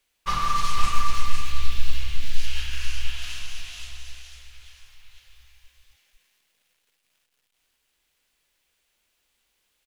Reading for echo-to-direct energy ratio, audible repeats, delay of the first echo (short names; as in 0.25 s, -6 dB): -4.5 dB, 1, 0.502 s